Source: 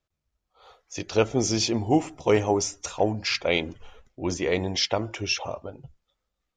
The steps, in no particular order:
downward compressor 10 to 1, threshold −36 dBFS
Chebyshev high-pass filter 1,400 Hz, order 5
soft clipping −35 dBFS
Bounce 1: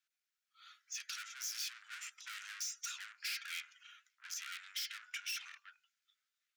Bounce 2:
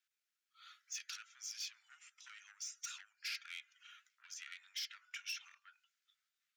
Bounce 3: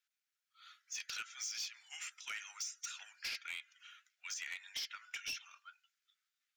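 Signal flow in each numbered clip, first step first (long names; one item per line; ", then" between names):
soft clipping, then Chebyshev high-pass filter, then downward compressor
downward compressor, then soft clipping, then Chebyshev high-pass filter
Chebyshev high-pass filter, then downward compressor, then soft clipping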